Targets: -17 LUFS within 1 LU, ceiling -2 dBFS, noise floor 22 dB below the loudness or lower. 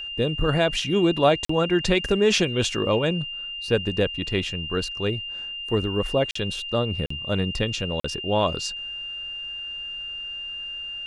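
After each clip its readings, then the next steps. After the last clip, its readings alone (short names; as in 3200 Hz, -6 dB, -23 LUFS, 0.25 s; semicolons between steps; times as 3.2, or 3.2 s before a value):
dropouts 4; longest dropout 44 ms; steady tone 2800 Hz; tone level -31 dBFS; loudness -24.5 LUFS; peak -6.5 dBFS; loudness target -17.0 LUFS
-> interpolate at 1.45/6.31/7.06/8, 44 ms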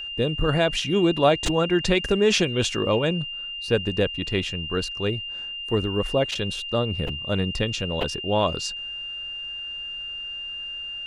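dropouts 0; steady tone 2800 Hz; tone level -31 dBFS
-> notch 2800 Hz, Q 30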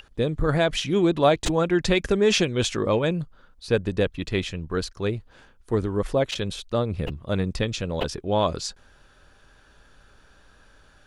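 steady tone none; loudness -24.5 LUFS; peak -6.5 dBFS; loudness target -17.0 LUFS
-> gain +7.5 dB; limiter -2 dBFS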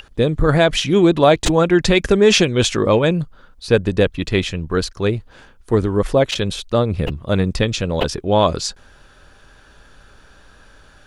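loudness -17.5 LUFS; peak -2.0 dBFS; noise floor -49 dBFS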